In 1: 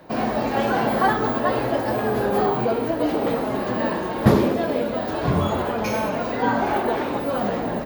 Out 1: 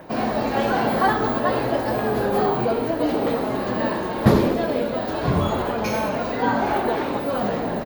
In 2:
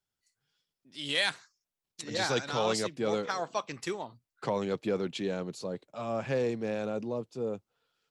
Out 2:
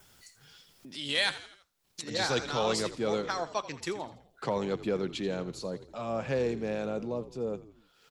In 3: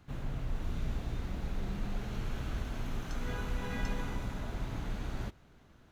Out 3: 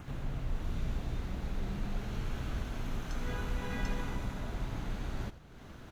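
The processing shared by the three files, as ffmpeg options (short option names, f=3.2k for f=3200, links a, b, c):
-filter_complex "[0:a]acompressor=mode=upward:threshold=-37dB:ratio=2.5,adynamicequalizer=threshold=0.00224:dfrequency=4200:dqfactor=5.5:tfrequency=4200:tqfactor=5.5:attack=5:release=100:ratio=0.375:range=1.5:mode=boostabove:tftype=bell,asplit=5[a][b][c][d][e];[b]adelay=83,afreqshift=-56,volume=-15dB[f];[c]adelay=166,afreqshift=-112,volume=-21.4dB[g];[d]adelay=249,afreqshift=-168,volume=-27.8dB[h];[e]adelay=332,afreqshift=-224,volume=-34.1dB[i];[a][f][g][h][i]amix=inputs=5:normalize=0"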